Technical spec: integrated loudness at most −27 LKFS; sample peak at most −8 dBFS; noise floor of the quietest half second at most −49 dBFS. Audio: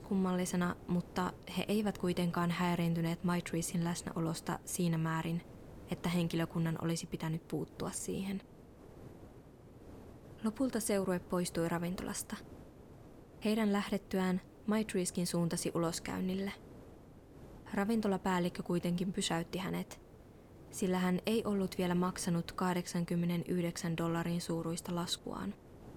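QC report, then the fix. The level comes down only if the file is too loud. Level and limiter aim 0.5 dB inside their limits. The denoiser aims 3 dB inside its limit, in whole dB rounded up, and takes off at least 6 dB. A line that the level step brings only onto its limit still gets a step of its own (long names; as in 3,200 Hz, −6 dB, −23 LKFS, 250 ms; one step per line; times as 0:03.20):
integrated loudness −36.0 LKFS: in spec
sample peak −19.5 dBFS: in spec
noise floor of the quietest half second −56 dBFS: in spec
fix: no processing needed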